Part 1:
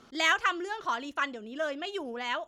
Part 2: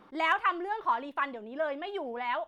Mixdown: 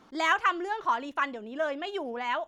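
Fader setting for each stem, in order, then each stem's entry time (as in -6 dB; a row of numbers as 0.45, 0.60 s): -5.5, -2.0 dB; 0.00, 0.00 s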